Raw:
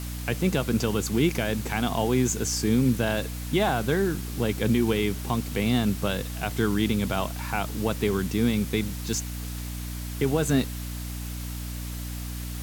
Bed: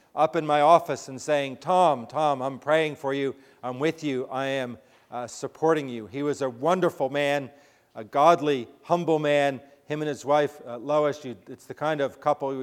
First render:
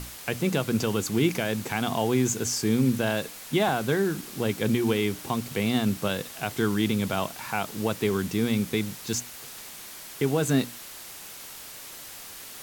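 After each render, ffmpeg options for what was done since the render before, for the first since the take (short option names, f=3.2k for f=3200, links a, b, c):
-af "bandreject=f=60:t=h:w=6,bandreject=f=120:t=h:w=6,bandreject=f=180:t=h:w=6,bandreject=f=240:t=h:w=6,bandreject=f=300:t=h:w=6"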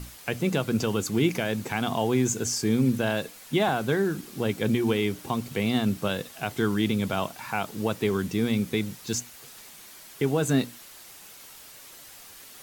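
-af "afftdn=nr=6:nf=-43"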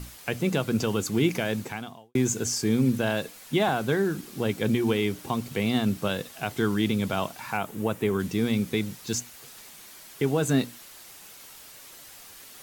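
-filter_complex "[0:a]asettb=1/sr,asplit=3[a][b][c];[a]atrim=end=7.574[d];[b]atrim=start=7.57:end=8.2,asetpts=PTS-STARTPTS,afade=t=in:d=0.004:c=qsin,afade=t=out:st=0.626:d=0.004:c=qsin,equalizer=f=4.7k:t=o:w=1:g=-9[e];[c]atrim=start=8.196[f];[d][e]acrossfade=d=0.004:c1=hsin:c2=qsin[g];[g][f]acrossfade=d=0.004:c1=qsin:c2=hsin,asplit=2[h][i];[h]atrim=end=2.15,asetpts=PTS-STARTPTS,afade=t=out:st=1.59:d=0.56:c=qua[j];[i]atrim=start=2.15,asetpts=PTS-STARTPTS,afade=t=in:d=0.004:c=hsin[k];[j][k]concat=n=2:v=0:a=1"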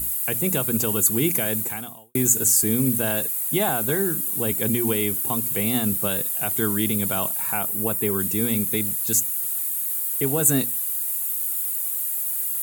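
-af "aexciter=amount=15.3:drive=3.3:freq=7.9k"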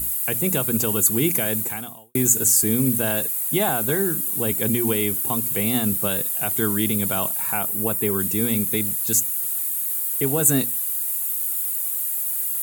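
-af "volume=1dB"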